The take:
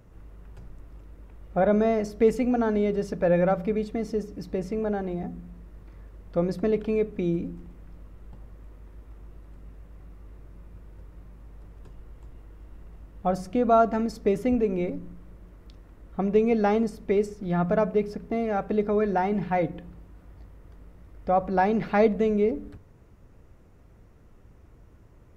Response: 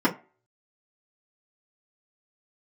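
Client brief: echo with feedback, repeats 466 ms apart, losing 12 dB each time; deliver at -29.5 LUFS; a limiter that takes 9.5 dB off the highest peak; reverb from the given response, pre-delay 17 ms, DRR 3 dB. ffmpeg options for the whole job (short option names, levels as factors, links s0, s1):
-filter_complex "[0:a]alimiter=limit=0.112:level=0:latency=1,aecho=1:1:466|932|1398:0.251|0.0628|0.0157,asplit=2[s0][s1];[1:a]atrim=start_sample=2205,adelay=17[s2];[s1][s2]afir=irnorm=-1:irlink=0,volume=0.126[s3];[s0][s3]amix=inputs=2:normalize=0,volume=0.562"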